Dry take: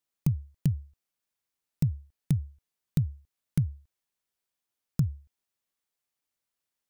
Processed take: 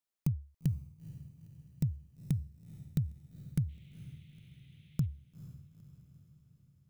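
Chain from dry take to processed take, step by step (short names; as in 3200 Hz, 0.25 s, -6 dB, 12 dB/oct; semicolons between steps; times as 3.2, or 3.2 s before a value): 3.68–5.05 band noise 2000–3700 Hz -66 dBFS; diffused feedback echo 0.465 s, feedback 55%, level -15 dB; gain -5.5 dB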